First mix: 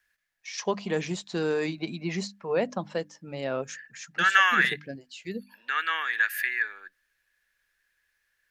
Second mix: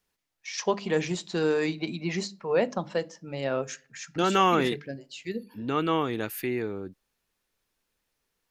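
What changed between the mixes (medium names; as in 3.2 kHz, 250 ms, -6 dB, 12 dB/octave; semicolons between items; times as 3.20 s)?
second voice: remove resonant high-pass 1.7 kHz, resonance Q 14; reverb: on, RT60 0.40 s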